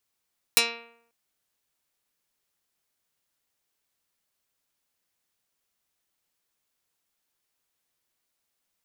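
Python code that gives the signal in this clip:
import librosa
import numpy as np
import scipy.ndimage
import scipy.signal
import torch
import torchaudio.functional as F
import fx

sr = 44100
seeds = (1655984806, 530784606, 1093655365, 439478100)

y = fx.pluck(sr, length_s=0.54, note=58, decay_s=0.71, pick=0.15, brightness='dark')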